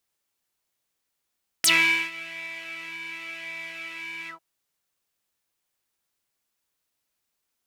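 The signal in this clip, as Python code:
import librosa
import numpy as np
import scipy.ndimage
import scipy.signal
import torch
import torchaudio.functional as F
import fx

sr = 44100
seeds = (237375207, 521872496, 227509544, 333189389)

y = fx.sub_patch_pwm(sr, seeds[0], note=64, wave2='triangle', interval_st=-12, detune_cents=16, level2_db=-0.5, sub_db=-15.0, noise_db=-4.5, kind='bandpass', cutoff_hz=780.0, q=7.0, env_oct=4.0, env_decay_s=0.06, env_sustain_pct=40, attack_ms=2.8, decay_s=0.46, sustain_db=-21.0, release_s=0.11, note_s=2.64, lfo_hz=0.91, width_pct=36, width_swing_pct=14)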